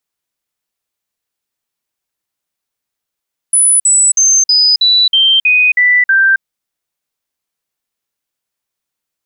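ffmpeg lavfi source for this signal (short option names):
-f lavfi -i "aevalsrc='0.501*clip(min(mod(t,0.32),0.27-mod(t,0.32))/0.005,0,1)*sin(2*PI*9970*pow(2,-floor(t/0.32)/3)*mod(t,0.32))':d=2.88:s=44100"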